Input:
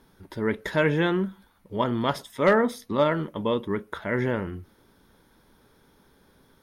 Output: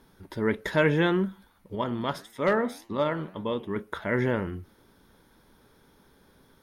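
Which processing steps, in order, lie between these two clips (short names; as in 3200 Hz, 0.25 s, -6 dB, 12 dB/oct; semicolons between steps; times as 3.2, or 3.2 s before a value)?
1.75–3.76 flange 1.8 Hz, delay 8.4 ms, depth 6.9 ms, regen +89%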